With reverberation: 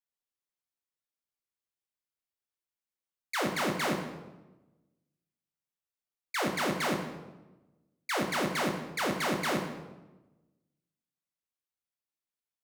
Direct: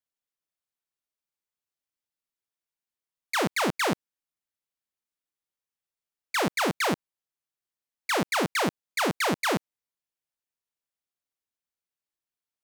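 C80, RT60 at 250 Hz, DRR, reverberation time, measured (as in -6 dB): 8.0 dB, 1.4 s, 1.5 dB, 1.1 s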